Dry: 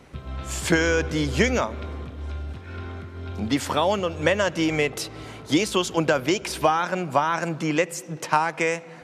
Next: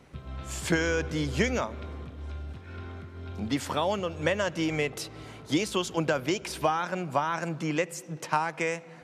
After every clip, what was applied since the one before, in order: peaking EQ 150 Hz +2.5 dB; trim -6 dB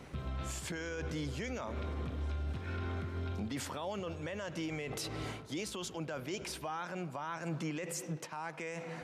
reverse; compression 10:1, threshold -35 dBFS, peak gain reduction 16 dB; reverse; peak limiter -35 dBFS, peak gain reduction 11 dB; trim +4.5 dB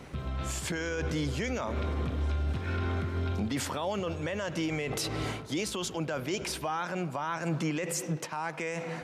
level rider gain up to 3 dB; trim +4 dB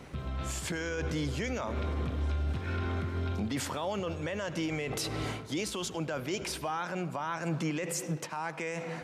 reverberation RT60 0.75 s, pre-delay 70 ms, DRR 20.5 dB; trim -1.5 dB

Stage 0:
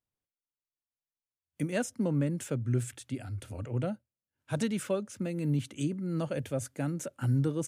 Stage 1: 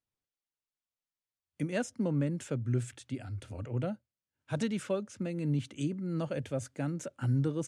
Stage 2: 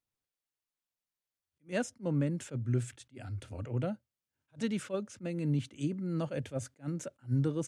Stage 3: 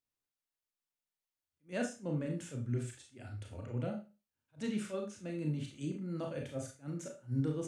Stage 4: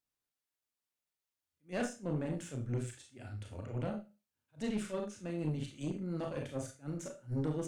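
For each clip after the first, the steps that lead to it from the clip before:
low-pass 7.5 kHz 12 dB/octave; trim -1.5 dB
attacks held to a fixed rise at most 320 dB/s
Schroeder reverb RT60 0.31 s, combs from 26 ms, DRR 1.5 dB; trim -5.5 dB
valve stage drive 32 dB, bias 0.65; trim +4 dB

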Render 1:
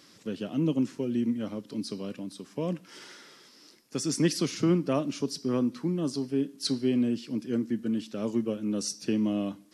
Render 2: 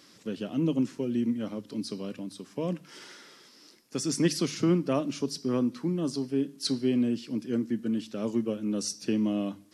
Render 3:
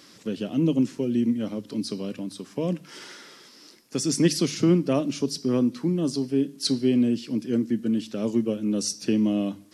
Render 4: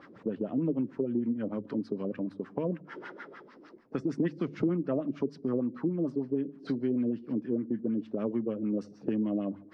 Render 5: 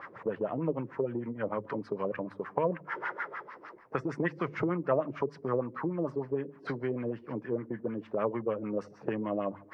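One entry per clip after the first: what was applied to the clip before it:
hum notches 50/100/150 Hz
dynamic bell 1.2 kHz, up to -5 dB, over -46 dBFS, Q 0.98; trim +5 dB
LFO low-pass sine 6.6 Hz 380–1800 Hz; compression 2.5:1, threshold -31 dBFS, peak gain reduction 13 dB
graphic EQ 125/250/500/1000/2000/4000 Hz +4/-11/+4/+11/+9/-5 dB

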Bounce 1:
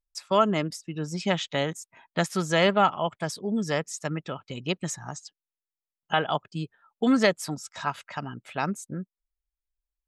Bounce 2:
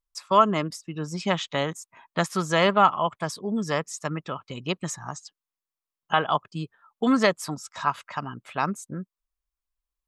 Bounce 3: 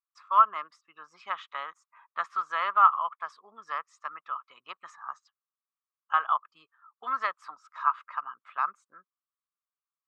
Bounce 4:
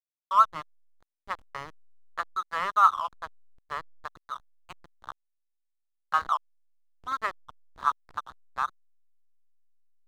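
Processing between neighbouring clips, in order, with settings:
peaking EQ 1.1 kHz +9.5 dB 0.41 oct
ladder band-pass 1.3 kHz, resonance 70%; trim +3.5 dB
hysteresis with a dead band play -30 dBFS

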